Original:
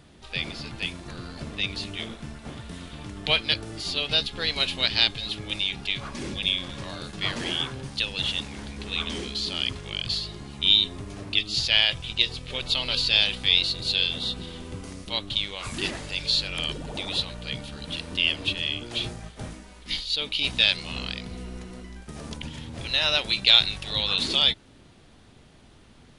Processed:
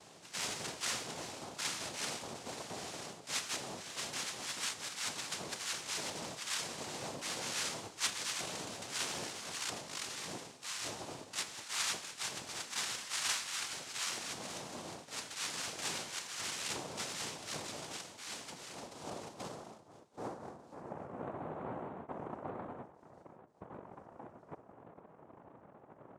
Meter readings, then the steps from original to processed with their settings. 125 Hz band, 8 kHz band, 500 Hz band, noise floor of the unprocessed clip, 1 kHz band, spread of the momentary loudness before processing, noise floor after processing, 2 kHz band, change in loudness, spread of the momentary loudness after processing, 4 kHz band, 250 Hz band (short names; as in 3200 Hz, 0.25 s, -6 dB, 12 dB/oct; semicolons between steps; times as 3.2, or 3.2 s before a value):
-17.0 dB, +4.0 dB, -9.0 dB, -52 dBFS, -4.5 dB, 19 LU, -59 dBFS, -13.5 dB, -15.0 dB, 17 LU, -18.5 dB, -12.5 dB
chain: reverse; compressor 8:1, threshold -36 dBFS, peak gain reduction 24 dB; reverse; low-pass sweep 2600 Hz -> 190 Hz, 17.72–21.42; resonator 430 Hz, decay 0.68 s, mix 90%; noise vocoder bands 2; pre-echo 49 ms -22.5 dB; gain +14.5 dB